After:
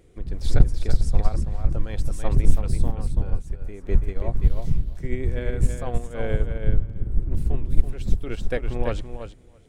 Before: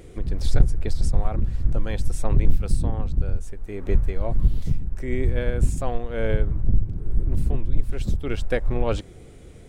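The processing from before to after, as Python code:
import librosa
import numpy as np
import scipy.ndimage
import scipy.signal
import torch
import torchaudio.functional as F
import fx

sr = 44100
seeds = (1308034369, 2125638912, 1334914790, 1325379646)

y = fx.echo_feedback(x, sr, ms=331, feedback_pct=15, wet_db=-6)
y = fx.upward_expand(y, sr, threshold_db=-35.0, expansion=1.5)
y = y * librosa.db_to_amplitude(2.5)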